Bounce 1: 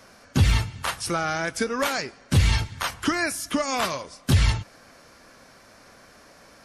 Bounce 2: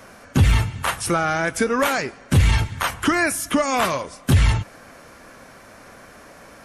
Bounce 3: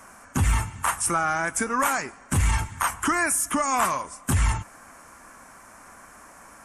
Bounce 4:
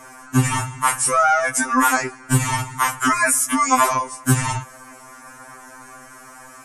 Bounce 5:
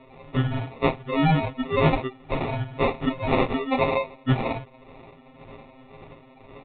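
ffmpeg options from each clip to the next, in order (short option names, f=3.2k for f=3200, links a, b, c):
-filter_complex "[0:a]asplit=2[a][b];[b]alimiter=limit=-19dB:level=0:latency=1,volume=0dB[c];[a][c]amix=inputs=2:normalize=0,equalizer=f=4.8k:t=o:w=0.87:g=-8,acontrast=22,volume=-3.5dB"
-af "equalizer=f=125:t=o:w=1:g=-6,equalizer=f=500:t=o:w=1:g=-8,equalizer=f=1k:t=o:w=1:g=7,equalizer=f=4k:t=o:w=1:g=-11,equalizer=f=8k:t=o:w=1:g=11,volume=-4dB"
-af "afftfilt=real='re*2.45*eq(mod(b,6),0)':imag='im*2.45*eq(mod(b,6),0)':win_size=2048:overlap=0.75,volume=8.5dB"
-filter_complex "[0:a]acrossover=split=740[a][b];[a]aeval=exprs='val(0)*(1-1/2+1/2*cos(2*PI*1.9*n/s))':c=same[c];[b]aeval=exprs='val(0)*(1-1/2-1/2*cos(2*PI*1.9*n/s))':c=same[d];[c][d]amix=inputs=2:normalize=0,acrusher=samples=28:mix=1:aa=0.000001,aresample=8000,aresample=44100"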